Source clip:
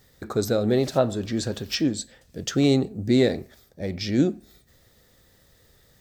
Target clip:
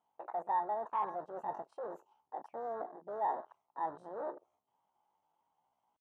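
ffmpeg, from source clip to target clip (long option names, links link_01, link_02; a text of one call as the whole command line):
ffmpeg -i in.wav -af "aeval=exprs='if(lt(val(0),0),0.708*val(0),val(0))':channel_layout=same,asetrate=74167,aresample=44100,atempo=0.594604,areverse,acompressor=threshold=-32dB:ratio=6,areverse,volume=32.5dB,asoftclip=hard,volume=-32.5dB,bandpass=frequency=890:width_type=q:width=3.6:csg=0,afwtdn=0.00251,volume=8dB" out.wav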